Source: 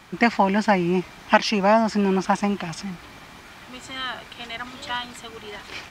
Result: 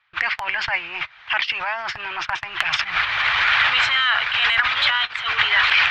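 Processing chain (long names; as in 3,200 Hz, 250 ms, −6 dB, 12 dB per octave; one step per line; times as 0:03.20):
camcorder AGC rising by 20 dB per second
low-pass filter 3,400 Hz 24 dB per octave
low-shelf EQ 140 Hz −11 dB
downward compressor 8 to 1, threshold −25 dBFS, peak gain reduction 14.5 dB
noise gate −32 dBFS, range −27 dB
transient designer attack −10 dB, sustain +9 dB
drawn EQ curve 130 Hz 0 dB, 190 Hz −29 dB, 1,500 Hz +10 dB
harmonic and percussive parts rebalanced percussive +6 dB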